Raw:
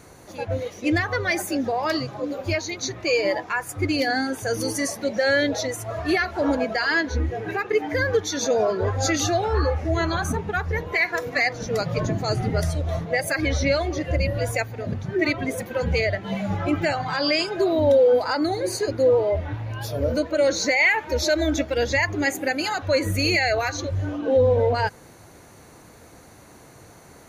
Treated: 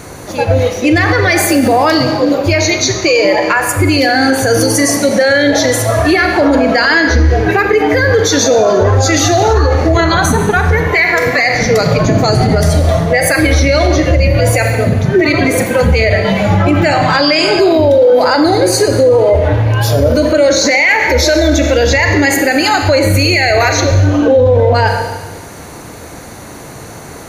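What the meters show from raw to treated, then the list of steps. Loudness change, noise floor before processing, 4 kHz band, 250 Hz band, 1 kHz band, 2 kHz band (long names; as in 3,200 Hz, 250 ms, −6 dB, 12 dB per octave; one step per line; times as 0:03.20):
+13.0 dB, −48 dBFS, +13.0 dB, +13.5 dB, +13.5 dB, +12.0 dB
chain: four-comb reverb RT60 1.2 s, combs from 28 ms, DRR 7 dB
boost into a limiter +18 dB
level −1 dB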